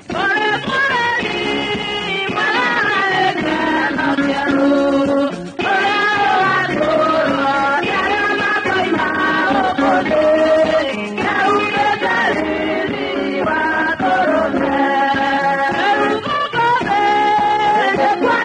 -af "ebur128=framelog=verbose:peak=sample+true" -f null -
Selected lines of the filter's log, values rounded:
Integrated loudness:
  I:         -15.4 LUFS
  Threshold: -25.4 LUFS
Loudness range:
  LRA:         1.5 LU
  Threshold: -35.4 LUFS
  LRA low:   -16.3 LUFS
  LRA high:  -14.8 LUFS
Sample peak:
  Peak:       -4.5 dBFS
True peak:
  Peak:       -4.5 dBFS